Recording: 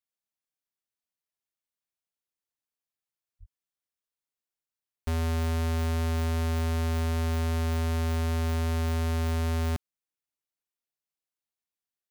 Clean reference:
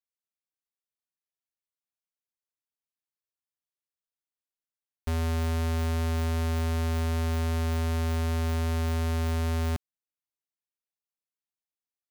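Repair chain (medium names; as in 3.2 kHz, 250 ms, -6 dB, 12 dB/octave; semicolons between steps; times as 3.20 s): de-plosive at 3.39/7.11 s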